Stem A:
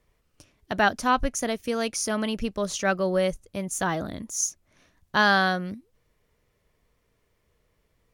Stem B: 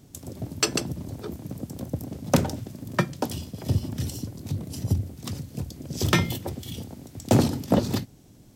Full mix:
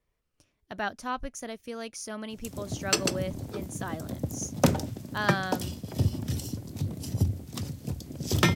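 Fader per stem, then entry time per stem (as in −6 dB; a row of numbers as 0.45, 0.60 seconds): −10.5, −1.5 decibels; 0.00, 2.30 seconds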